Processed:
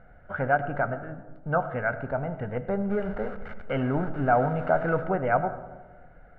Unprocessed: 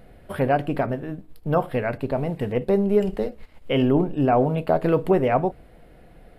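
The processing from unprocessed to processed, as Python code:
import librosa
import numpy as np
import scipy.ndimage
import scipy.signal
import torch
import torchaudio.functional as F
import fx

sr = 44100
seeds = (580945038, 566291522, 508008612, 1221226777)

y = fx.zero_step(x, sr, step_db=-30.5, at=(2.9, 5.04))
y = fx.lowpass_res(y, sr, hz=1500.0, q=3.7)
y = y + 0.47 * np.pad(y, (int(1.4 * sr / 1000.0), 0))[:len(y)]
y = fx.rev_freeverb(y, sr, rt60_s=1.3, hf_ratio=0.3, predelay_ms=50, drr_db=12.5)
y = F.gain(torch.from_numpy(y), -7.5).numpy()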